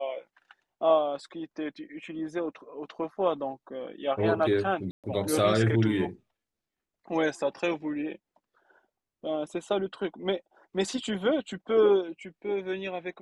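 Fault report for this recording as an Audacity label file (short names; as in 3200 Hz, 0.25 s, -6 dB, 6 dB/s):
4.910000	5.040000	gap 0.127 s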